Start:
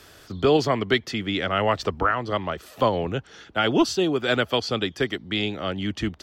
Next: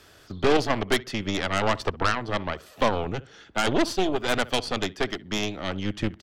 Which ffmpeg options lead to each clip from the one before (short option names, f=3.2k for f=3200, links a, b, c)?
-filter_complex "[0:a]highshelf=f=11k:g=-5.5,asplit=2[a][b];[b]adelay=64,lowpass=f=2k:p=1,volume=-18dB,asplit=2[c][d];[d]adelay=64,lowpass=f=2k:p=1,volume=0.29,asplit=2[e][f];[f]adelay=64,lowpass=f=2k:p=1,volume=0.29[g];[a][c][e][g]amix=inputs=4:normalize=0,aeval=exprs='0.376*(cos(1*acos(clip(val(0)/0.376,-1,1)))-cos(1*PI/2))+0.119*(cos(6*acos(clip(val(0)/0.376,-1,1)))-cos(6*PI/2))+0.0335*(cos(8*acos(clip(val(0)/0.376,-1,1)))-cos(8*PI/2))':c=same,volume=-3.5dB"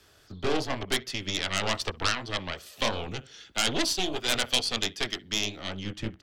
-filter_complex "[0:a]acrossover=split=160|2500[a][b][c];[b]flanger=delay=15.5:depth=7.2:speed=2.6[d];[c]dynaudnorm=f=230:g=9:m=10.5dB[e];[a][d][e]amix=inputs=3:normalize=0,volume=-4.5dB"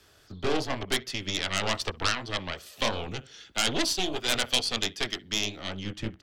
-af anull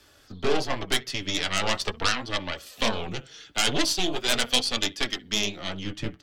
-af "flanger=delay=3.4:depth=3.5:regen=50:speed=0.41:shape=sinusoidal,volume=6.5dB"